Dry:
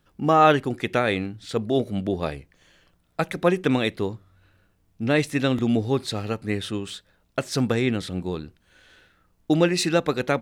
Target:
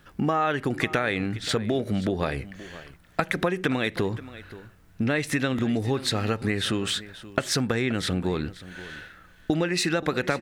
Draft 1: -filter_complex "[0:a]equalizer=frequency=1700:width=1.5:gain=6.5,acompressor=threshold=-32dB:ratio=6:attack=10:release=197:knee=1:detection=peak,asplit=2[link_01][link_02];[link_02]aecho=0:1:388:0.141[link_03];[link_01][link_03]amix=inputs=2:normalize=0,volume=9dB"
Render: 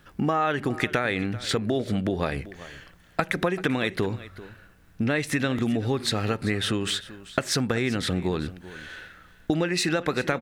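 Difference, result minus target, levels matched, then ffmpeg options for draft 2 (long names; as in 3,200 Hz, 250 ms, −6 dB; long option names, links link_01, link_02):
echo 139 ms early
-filter_complex "[0:a]equalizer=frequency=1700:width=1.5:gain=6.5,acompressor=threshold=-32dB:ratio=6:attack=10:release=197:knee=1:detection=peak,asplit=2[link_01][link_02];[link_02]aecho=0:1:527:0.141[link_03];[link_01][link_03]amix=inputs=2:normalize=0,volume=9dB"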